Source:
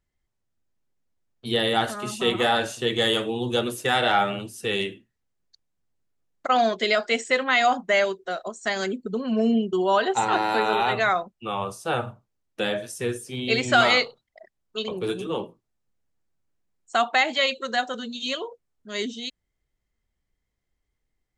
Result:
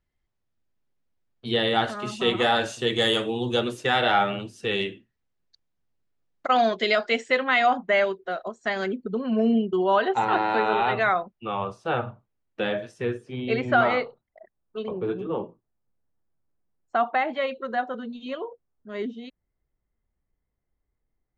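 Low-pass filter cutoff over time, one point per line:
0:01.99 4,700 Hz
0:03.06 9,700 Hz
0:03.96 4,700 Hz
0:06.94 4,700 Hz
0:07.75 2,800 Hz
0:12.89 2,800 Hz
0:13.88 1,400 Hz

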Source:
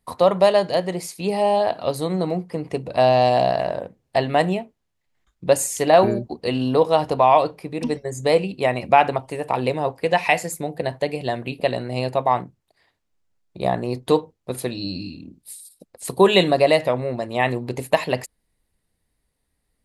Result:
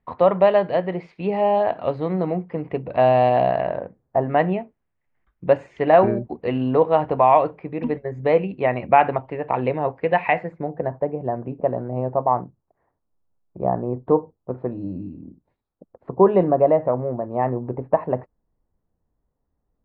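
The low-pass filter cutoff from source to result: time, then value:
low-pass filter 24 dB per octave
0:03.75 2,500 Hz
0:04.20 1,200 Hz
0:04.39 2,300 Hz
0:10.21 2,300 Hz
0:11.10 1,200 Hz

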